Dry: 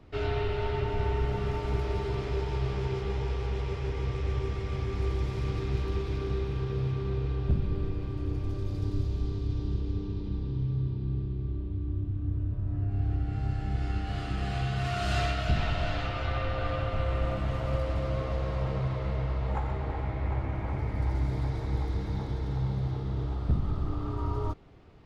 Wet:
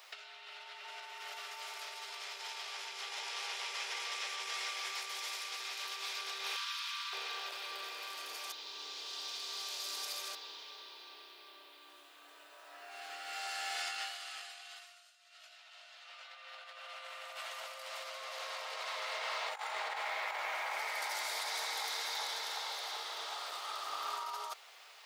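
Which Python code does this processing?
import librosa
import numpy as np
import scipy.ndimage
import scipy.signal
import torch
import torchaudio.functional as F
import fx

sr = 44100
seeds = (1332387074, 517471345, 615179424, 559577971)

y = fx.cheby_ripple_highpass(x, sr, hz=940.0, ripple_db=3, at=(6.56, 7.13))
y = fx.edit(y, sr, fx.reverse_span(start_s=8.52, length_s=1.83), tone=tone)
y = np.diff(y, prepend=0.0)
y = fx.over_compress(y, sr, threshold_db=-58.0, ratio=-0.5)
y = scipy.signal.sosfilt(scipy.signal.cheby2(4, 60, 170.0, 'highpass', fs=sr, output='sos'), y)
y = F.gain(torch.from_numpy(y), 17.5).numpy()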